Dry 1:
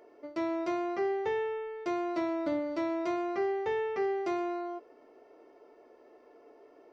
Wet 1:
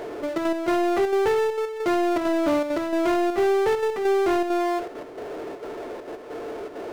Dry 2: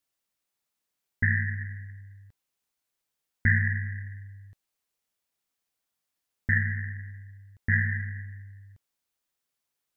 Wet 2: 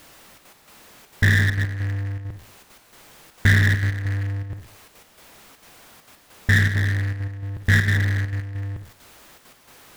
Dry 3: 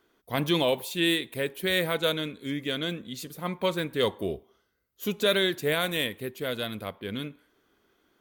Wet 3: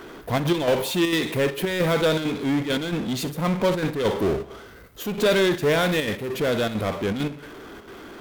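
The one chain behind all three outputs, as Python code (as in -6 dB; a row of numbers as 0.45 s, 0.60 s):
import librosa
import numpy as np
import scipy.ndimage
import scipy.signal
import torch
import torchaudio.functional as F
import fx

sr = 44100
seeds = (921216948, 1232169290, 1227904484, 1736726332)

y = fx.high_shelf(x, sr, hz=3100.0, db=-12.0)
y = fx.rev_schroeder(y, sr, rt60_s=0.32, comb_ms=38, drr_db=13.5)
y = fx.step_gate(y, sr, bpm=200, pattern='xxxxx.x..xxxxx.', floor_db=-12.0, edge_ms=4.5)
y = fx.power_curve(y, sr, exponent=0.5)
y = y * 10.0 ** (-24 / 20.0) / np.sqrt(np.mean(np.square(y)))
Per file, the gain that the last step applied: +6.0 dB, +4.0 dB, +2.0 dB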